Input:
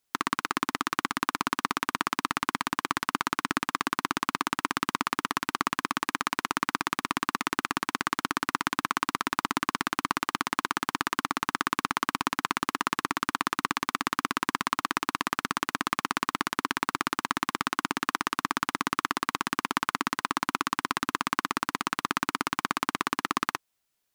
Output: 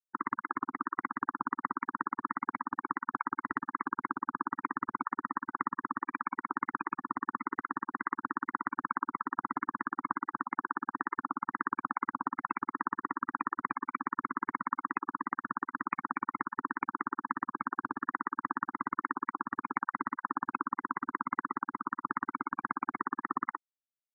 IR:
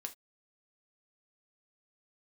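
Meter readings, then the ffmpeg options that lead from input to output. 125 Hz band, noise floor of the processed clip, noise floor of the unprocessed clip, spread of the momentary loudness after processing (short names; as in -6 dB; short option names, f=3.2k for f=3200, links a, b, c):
-12.0 dB, -74 dBFS, -79 dBFS, 2 LU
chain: -filter_complex "[0:a]afftfilt=real='re*gte(hypot(re,im),0.0891)':imag='im*gte(hypot(re,im),0.0891)':win_size=1024:overlap=0.75,acrossover=split=250|2900[a][b][c];[a]aeval=exprs='0.0133*(abs(mod(val(0)/0.0133+3,4)-2)-1)':c=same[d];[d][b][c]amix=inputs=3:normalize=0,volume=-3.5dB"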